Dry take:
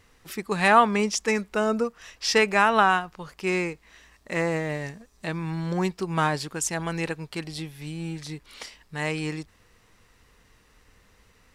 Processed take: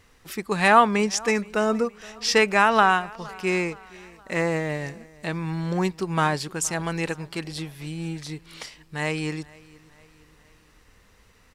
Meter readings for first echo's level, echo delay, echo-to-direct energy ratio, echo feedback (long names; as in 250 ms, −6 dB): −23.0 dB, 468 ms, −22.0 dB, 48%